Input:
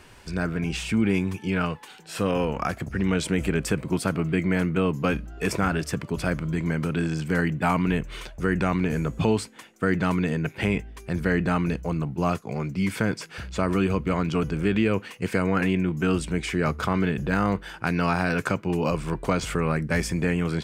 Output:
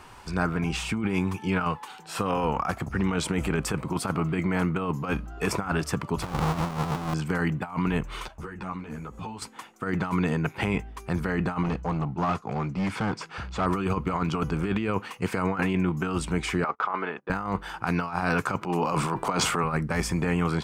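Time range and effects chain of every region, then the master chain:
0:06.22–0:07.14: each half-wave held at its own peak + high-shelf EQ 8,600 Hz −7.5 dB
0:08.28–0:09.42: downward compressor 8 to 1, threshold −30 dBFS + string-ensemble chorus
0:11.63–0:13.66: hard clipping −23.5 dBFS + high-frequency loss of the air 63 metres
0:16.64–0:17.30: band-pass filter 490–2,300 Hz + noise gate −41 dBFS, range −29 dB
0:18.61–0:19.64: high-pass filter 150 Hz + transient designer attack −6 dB, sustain +10 dB
whole clip: flat-topped bell 1,000 Hz +8.5 dB 1 octave; compressor whose output falls as the input rises −23 dBFS, ratio −0.5; level −2 dB

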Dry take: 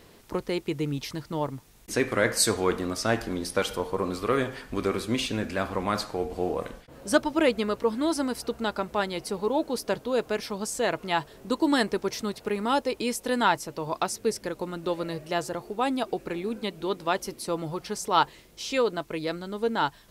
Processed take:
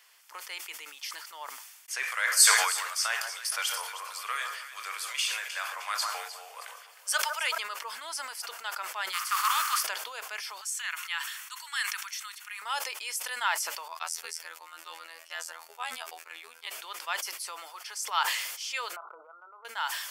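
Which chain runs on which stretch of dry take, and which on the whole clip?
0:02.03–0:07.58: Butterworth high-pass 400 Hz 72 dB per octave + spectral tilt +1.5 dB per octave + delay that swaps between a low-pass and a high-pass 155 ms, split 1,400 Hz, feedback 54%, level −8 dB
0:09.12–0:09.82: compressing power law on the bin magnitudes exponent 0.49 + high-pass with resonance 1,200 Hz, resonance Q 9.8
0:10.61–0:12.62: high-pass filter 1,200 Hz 24 dB per octave + notch filter 4,900 Hz, Q 7.6
0:13.88–0:16.67: noise gate −43 dBFS, range −22 dB + phases set to zero 82.3 Hz
0:18.96–0:19.65: linear-phase brick-wall band-pass 330–1,500 Hz + downward compressor 2 to 1, threshold −36 dBFS
whole clip: Bessel high-pass filter 1,500 Hz, order 4; notch filter 3,900 Hz, Q 6.3; level that may fall only so fast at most 45 dB per second

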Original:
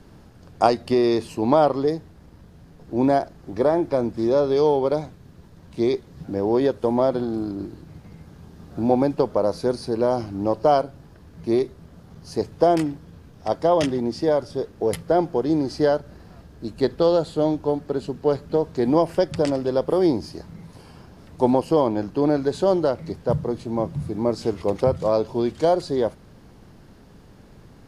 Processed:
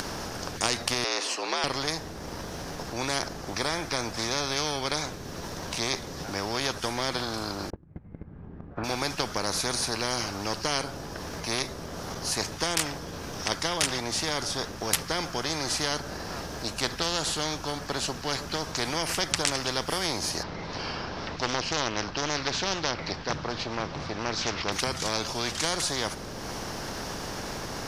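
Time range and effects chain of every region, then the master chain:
0:01.04–0:01.64: high-pass filter 330 Hz 24 dB per octave + frequency shifter +70 Hz + high-frequency loss of the air 70 metres
0:07.70–0:08.84: low-pass filter 2,200 Hz 24 dB per octave + noise gate −37 dBFS, range −37 dB + low-shelf EQ 260 Hz +9.5 dB
0:20.43–0:24.72: low-pass filter 4,700 Hz 24 dB per octave + highs frequency-modulated by the lows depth 0.38 ms
whole clip: parametric band 5,700 Hz +9.5 dB 0.38 octaves; upward compression, threshold −35 dBFS; every bin compressed towards the loudest bin 4 to 1; level −1 dB

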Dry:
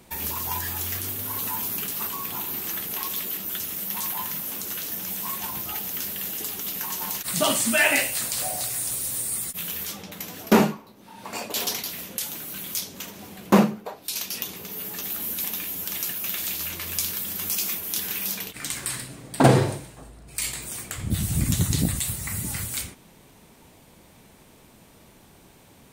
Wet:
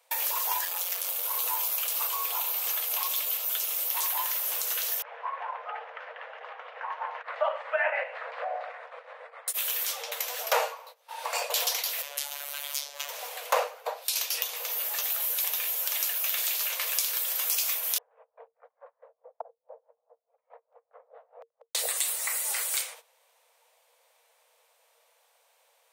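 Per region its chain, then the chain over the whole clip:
0:00.65–0:03.94: parametric band 1,600 Hz −4 dB 0.28 octaves + notch filter 1,900 Hz + saturating transformer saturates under 2,100 Hz
0:05.02–0:09.48: low-pass filter 1,800 Hz 24 dB per octave + shaped tremolo saw up 7.3 Hz, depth 40%
0:12.02–0:13.09: high-shelf EQ 7,600 Hz −7 dB + phases set to zero 143 Hz
0:17.98–0:21.75: Bessel low-pass filter 550 Hz, order 4 + gate with flip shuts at −14 dBFS, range −35 dB + tremolo with a sine in dB 4.7 Hz, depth 19 dB
whole clip: noise gate −46 dBFS, range −17 dB; Chebyshev high-pass filter 460 Hz, order 10; downward compressor 2 to 1, threshold −37 dBFS; level +7 dB

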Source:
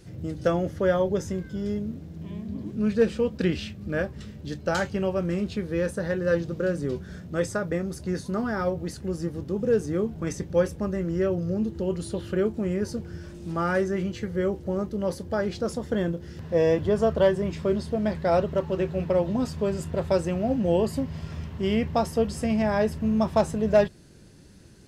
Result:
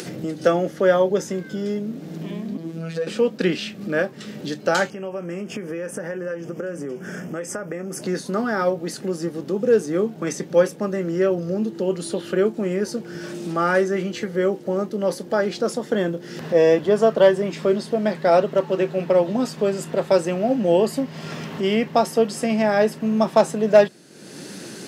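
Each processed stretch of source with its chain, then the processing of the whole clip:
0:02.57–0:03.07: downward compressor 2.5 to 1, threshold −29 dBFS + phases set to zero 164 Hz
0:04.90–0:08.02: downward compressor 4 to 1, threshold −35 dBFS + Butterworth band-reject 4,000 Hz, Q 1.9
whole clip: Bessel high-pass filter 260 Hz, order 8; notch filter 1,000 Hz, Q 18; upward compression, threshold −30 dBFS; level +7 dB

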